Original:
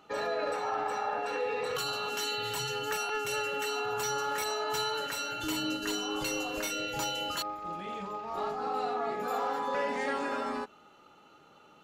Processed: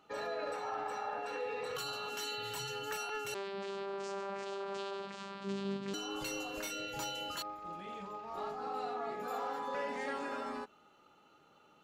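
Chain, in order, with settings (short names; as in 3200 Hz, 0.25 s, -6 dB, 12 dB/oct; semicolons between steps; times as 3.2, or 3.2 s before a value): 3.34–5.94 vocoder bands 8, saw 197 Hz; gain -6.5 dB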